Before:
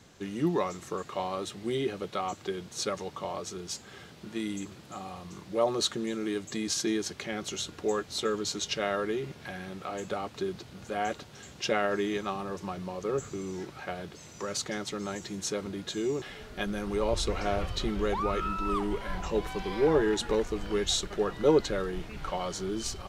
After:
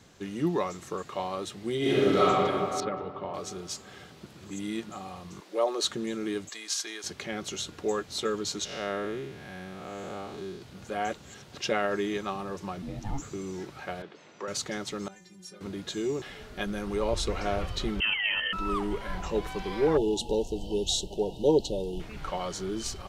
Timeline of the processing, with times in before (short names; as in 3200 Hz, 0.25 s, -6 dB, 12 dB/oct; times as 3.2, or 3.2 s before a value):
1.78–2.26 reverb throw, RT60 2.8 s, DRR -11 dB
2.8–3.34 air absorption 370 m
4.26–4.9 reverse
5.4–5.84 HPF 320 Hz 24 dB/oct
6.49–7.04 HPF 870 Hz
8.65–10.62 time blur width 0.202 s
11.18–11.59 reverse
12.82–13.22 frequency shift -420 Hz
14.02–14.48 BPF 280–3000 Hz
15.08–15.61 metallic resonator 180 Hz, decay 0.33 s, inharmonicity 0.008
18–18.53 inverted band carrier 3100 Hz
19.97–22 brick-wall FIR band-stop 960–2600 Hz